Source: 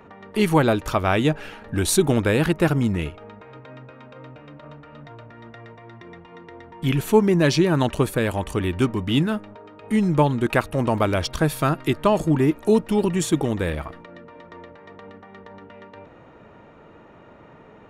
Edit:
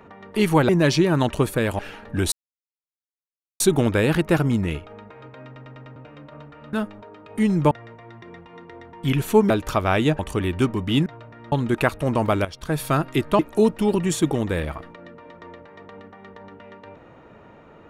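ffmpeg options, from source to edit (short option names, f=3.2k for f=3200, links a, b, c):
-filter_complex "[0:a]asplit=17[a][b][c][d][e][f][g][h][i][j][k][l][m][n][o][p][q];[a]atrim=end=0.692[r];[b]atrim=start=7.288:end=8.392[s];[c]atrim=start=1.378:end=1.91,asetpts=PTS-STARTPTS,afade=t=out:st=0.528:d=0.004:c=hsin,apad=pad_dur=1.28[t];[d]atrim=start=1.91:end=3.872,asetpts=PTS-STARTPTS,afade=t=in:d=0.004:c=hsin[u];[e]atrim=start=3.768:end=3.872[v];[f]atrim=start=3.768:end=3.872[w];[g]atrim=start=3.768:end=3.872[x];[h]atrim=start=3.768:end=3.872[y];[i]atrim=start=4.268:end=5.042[z];[j]atrim=start=9.258:end=10.242[aa];[k]atrim=start=5.498:end=7.292[ab];[l]atrim=start=0.688:end=1.382[ac];[m]atrim=start=8.388:end=9.262[ad];[n]atrim=start=5.038:end=5.502[ae];[o]atrim=start=10.238:end=11.17,asetpts=PTS-STARTPTS,afade=t=out:st=0.928:d=0.004:c=hsin:silence=0.211349[af];[p]atrim=start=11.17:end=12.112,asetpts=PTS-STARTPTS,afade=t=in:d=0.37:c=qua:silence=0.211349[ag];[q]atrim=start=12.488[ah];[r][s]acrossfade=d=0.004:c1=hsin:c2=hsin[ai];[t][u]concat=n=2:v=0:a=1[aj];[ai][aj]acrossfade=d=0.004:c1=hsin:c2=hsin[ak];[ak][v]acrossfade=d=0.004:c1=hsin:c2=hsin[al];[al][w]acrossfade=d=0.004:c1=hsin:c2=hsin[am];[am][x]acrossfade=d=0.004:c1=hsin:c2=hsin[an];[an][y]acrossfade=d=0.004:c1=hsin:c2=hsin[ao];[ao][z]acrossfade=d=0.004:c1=hsin:c2=hsin[ap];[ap][aa]acrossfade=d=0.004:c1=hsin:c2=hsin[aq];[aq][ab]acrossfade=d=0.004:c1=hsin:c2=hsin[ar];[ar][ac]acrossfade=d=0.004:c1=hsin:c2=hsin[as];[as][ad]acrossfade=d=0.004:c1=hsin:c2=hsin[at];[at][ae]acrossfade=d=0.004:c1=hsin:c2=hsin[au];[af][ag]concat=n=2:v=0:a=1[av];[au][av]acrossfade=d=0.004:c1=hsin:c2=hsin[aw];[aw][ah]acrossfade=d=0.004:c1=hsin:c2=hsin"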